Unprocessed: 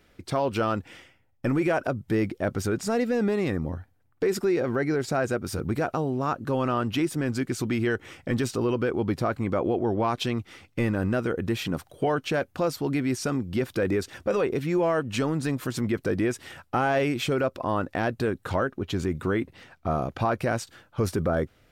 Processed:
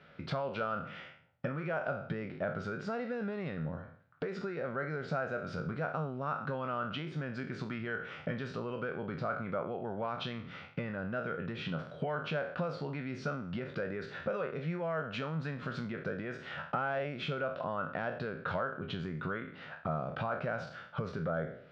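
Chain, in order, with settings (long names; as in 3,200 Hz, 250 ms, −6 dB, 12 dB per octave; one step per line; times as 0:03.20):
peak hold with a decay on every bin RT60 0.43 s
downward compressor 5 to 1, threshold −36 dBFS, peak gain reduction 15.5 dB
loudspeaker in its box 110–4,000 Hz, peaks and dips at 160 Hz +9 dB, 320 Hz −10 dB, 590 Hz +6 dB, 1,400 Hz +9 dB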